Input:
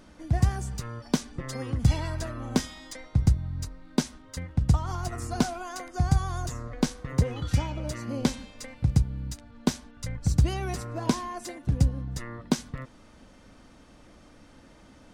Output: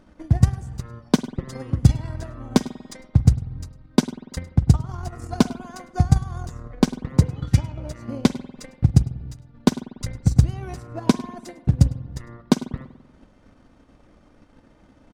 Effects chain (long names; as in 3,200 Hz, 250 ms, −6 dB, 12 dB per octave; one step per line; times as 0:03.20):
transient designer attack +9 dB, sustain −7 dB
on a send: single-tap delay 104 ms −20 dB
on the sum: spring reverb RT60 1.3 s, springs 48 ms, chirp 35 ms, DRR 14 dB
one half of a high-frequency compander decoder only
level −1 dB